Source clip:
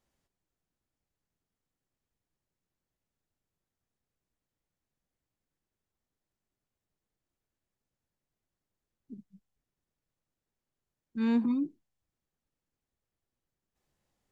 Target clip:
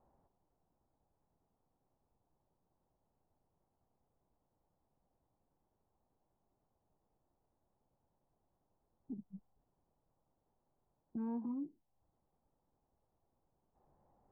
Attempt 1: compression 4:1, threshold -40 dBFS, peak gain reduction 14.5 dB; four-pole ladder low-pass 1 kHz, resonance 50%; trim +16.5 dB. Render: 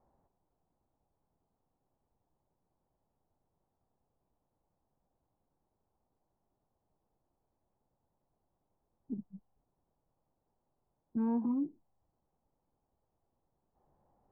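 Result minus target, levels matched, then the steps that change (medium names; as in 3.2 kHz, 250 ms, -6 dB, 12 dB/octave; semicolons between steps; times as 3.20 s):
compression: peak gain reduction -8 dB
change: compression 4:1, threshold -50.5 dBFS, peak gain reduction 22 dB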